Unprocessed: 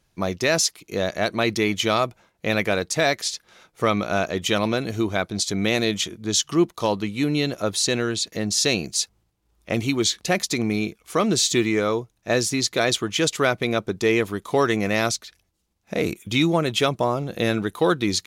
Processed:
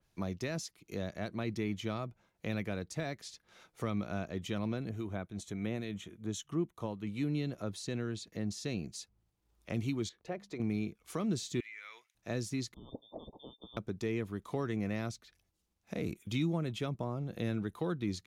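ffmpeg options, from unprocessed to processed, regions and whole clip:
-filter_complex "[0:a]asettb=1/sr,asplit=3[a][b][c];[a]atrim=end=4.894[d];[b]atrim=start=4.89:end=7.07,asetpts=PTS-STARTPTS,afade=t=in:d=0.004:c=qsin,afade=t=out:st=2.176:d=0.004:c=qsin,equalizer=f=4.8k:t=o:w=0.36:g=-14.5,acrossover=split=1400[e][f];[e]aeval=exprs='val(0)*(1-0.5/2+0.5/2*cos(2*PI*3.6*n/s))':c=same[g];[f]aeval=exprs='val(0)*(1-0.5/2-0.5/2*cos(2*PI*3.6*n/s))':c=same[h];[g][h]amix=inputs=2:normalize=0[i];[c]atrim=start=7.066[j];[d][i]acrossfade=d=0.004:c1=hsin:c2=qsin[k];[k][j]acrossfade=d=0.004:c1=qsin:c2=hsin,asettb=1/sr,asplit=3[l][m][n];[l]atrim=end=10.094[o];[m]atrim=start=10.09:end=10.6,asetpts=PTS-STARTPTS,afade=t=in:d=0.004:c=qsin,afade=t=out:st=0.506:d=0.004:c=qsin,lowpass=f=1.1k:p=1,lowshelf=f=320:t=q:w=1.5:g=-7.5,bandreject=f=50:t=h:w=6,bandreject=f=100:t=h:w=6,bandreject=f=150:t=h:w=6,bandreject=f=200:t=h:w=6[p];[n]atrim=start=10.596[q];[o][p]acrossfade=d=0.004:c1=hsin:c2=qsin[r];[r][q]acrossfade=d=0.004:c1=qsin:c2=hsin,asettb=1/sr,asplit=3[s][t][u];[s]atrim=end=11.604[v];[t]atrim=start=11.6:end=12.15,asetpts=PTS-STARTPTS,afade=t=in:d=0.004:c=qsin,afade=t=out:st=0.546:d=0.004:c=qsin,highpass=f=2.1k:t=q:w=4,acompressor=threshold=-33dB:ratio=2.5:attack=3.2:release=140:knee=1:detection=peak[w];[u]atrim=start=12.146[x];[v][w]acrossfade=d=0.004:c1=hsin:c2=qsin[y];[y][x]acrossfade=d=0.004:c1=qsin:c2=hsin,asettb=1/sr,asplit=3[z][aa][ab];[z]atrim=end=12.744[ac];[aa]atrim=start=12.74:end=13.77,asetpts=PTS-STARTPTS,afade=t=in:d=0.004:c=qsin,afade=t=out:st=1.026:d=0.004:c=qsin,aecho=1:1:1.2:0.5,atrim=end_sample=45423,lowpass=f=3.1k:t=q:w=0.5098,lowpass=f=3.1k:t=q:w=0.6013,lowpass=f=3.1k:t=q:w=0.9,lowpass=f=3.1k:t=q:w=2.563,afreqshift=-3700,asuperstop=centerf=2000:order=12:qfactor=0.54[ad];[ab]atrim=start=13.766[ae];[ac][ad]acrossfade=d=0.004:c1=hsin:c2=qsin[af];[af][ae]acrossfade=d=0.004:c1=qsin:c2=hsin,acrossover=split=260[ag][ah];[ah]acompressor=threshold=-40dB:ratio=2[ai];[ag][ai]amix=inputs=2:normalize=0,adynamicequalizer=threshold=0.00355:dfrequency=2900:dqfactor=0.7:tfrequency=2900:tqfactor=0.7:attack=5:release=100:ratio=0.375:range=3:mode=cutabove:tftype=highshelf,volume=-7.5dB"

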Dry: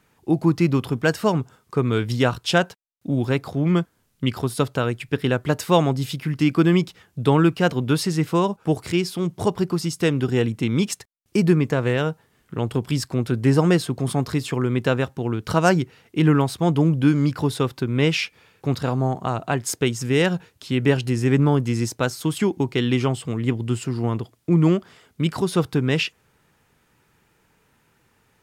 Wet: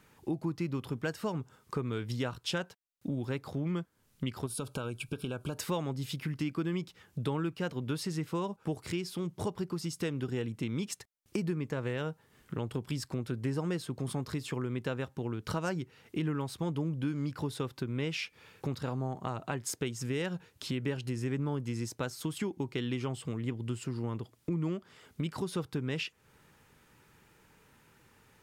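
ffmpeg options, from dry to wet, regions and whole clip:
-filter_complex "[0:a]asettb=1/sr,asplit=3[a][b][c];[a]atrim=end=4.464[d];[b]atrim=start=4.46:end=5.58,asetpts=PTS-STARTPTS,afade=t=in:d=0.004:c=qsin,afade=t=out:st=1.116:d=0.004:c=qsin,equalizer=f=9.9k:w=2.1:g=8.5,acompressor=threshold=-24dB:ratio=4:attack=3.2:release=140:knee=1:detection=peak,asuperstop=centerf=1900:order=20:qfactor=3.3[e];[c]atrim=start=5.576[f];[d][e]acrossfade=d=0.004:c1=hsin:c2=qsin[g];[g][f]acrossfade=d=0.004:c1=qsin:c2=hsin,bandreject=f=700:w=12,acompressor=threshold=-36dB:ratio=3"

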